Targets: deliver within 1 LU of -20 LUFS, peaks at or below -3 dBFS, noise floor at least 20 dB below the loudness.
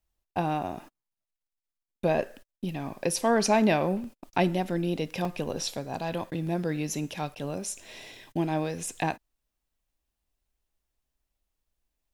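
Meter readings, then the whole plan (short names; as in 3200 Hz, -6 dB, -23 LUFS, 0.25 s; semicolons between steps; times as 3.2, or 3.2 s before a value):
dropouts 3; longest dropout 2.1 ms; loudness -29.5 LUFS; peak -10.5 dBFS; loudness target -20.0 LUFS
-> interpolate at 4.04/5.25/6.47, 2.1 ms; gain +9.5 dB; limiter -3 dBFS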